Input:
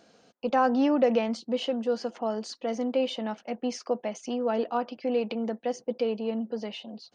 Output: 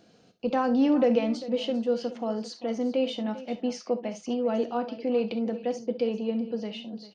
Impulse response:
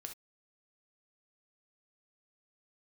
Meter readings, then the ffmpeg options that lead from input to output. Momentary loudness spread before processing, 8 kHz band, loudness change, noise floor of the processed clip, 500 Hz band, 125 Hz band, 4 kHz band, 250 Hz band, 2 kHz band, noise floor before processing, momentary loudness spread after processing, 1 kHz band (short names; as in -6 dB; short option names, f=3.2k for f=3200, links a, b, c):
10 LU, -2.5 dB, +0.5 dB, -59 dBFS, +0.5 dB, n/a, -0.5 dB, +2.5 dB, -2.5 dB, -62 dBFS, 10 LU, -3.5 dB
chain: -filter_complex "[0:a]equalizer=f=1.1k:w=0.36:g=-11,aecho=1:1:396:0.158,asplit=2[a][b];[1:a]atrim=start_sample=2205,lowpass=4.5k[c];[b][c]afir=irnorm=-1:irlink=0,volume=7dB[d];[a][d]amix=inputs=2:normalize=0"